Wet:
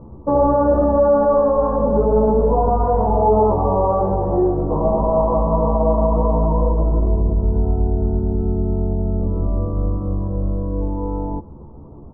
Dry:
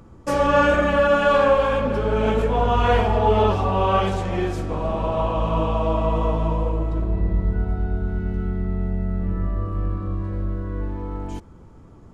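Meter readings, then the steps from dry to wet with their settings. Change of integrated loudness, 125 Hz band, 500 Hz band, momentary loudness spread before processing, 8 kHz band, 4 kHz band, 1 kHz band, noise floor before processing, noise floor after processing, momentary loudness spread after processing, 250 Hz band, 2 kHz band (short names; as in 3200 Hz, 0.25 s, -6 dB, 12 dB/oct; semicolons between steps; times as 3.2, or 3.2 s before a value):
+3.5 dB, +3.5 dB, +4.5 dB, 11 LU, n/a, under -40 dB, +2.0 dB, -46 dBFS, -38 dBFS, 8 LU, +5.0 dB, under -15 dB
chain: limiter -15.5 dBFS, peak gain reduction 11 dB; elliptic low-pass 1000 Hz, stop band 80 dB; doubler 14 ms -4 dB; gain +6.5 dB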